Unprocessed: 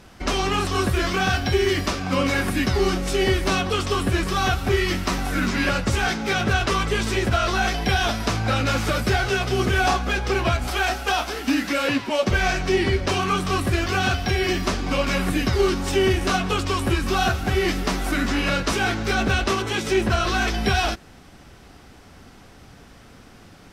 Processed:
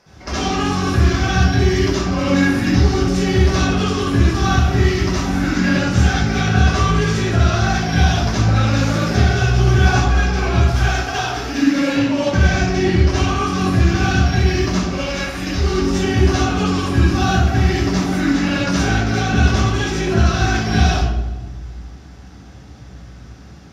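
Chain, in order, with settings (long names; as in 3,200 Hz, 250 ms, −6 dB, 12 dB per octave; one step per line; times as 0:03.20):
0:14.72–0:15.64: octave-band graphic EQ 125/250/1,000 Hz −10/−9/−3 dB
convolution reverb RT60 1.2 s, pre-delay 60 ms, DRR −7 dB
level −8.5 dB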